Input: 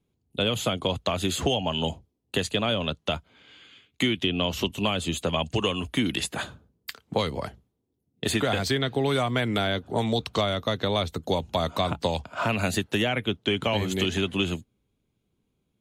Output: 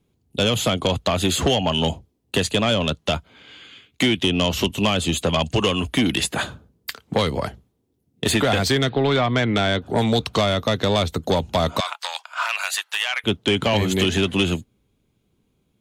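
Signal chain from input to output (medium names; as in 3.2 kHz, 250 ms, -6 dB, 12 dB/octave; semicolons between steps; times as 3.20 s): 8.89–9.82 s: Chebyshev low-pass 4.2 kHz, order 4; in parallel at -8 dB: sine folder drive 7 dB, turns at -12 dBFS; 11.80–13.24 s: on the sum: high-pass 980 Hz 24 dB/octave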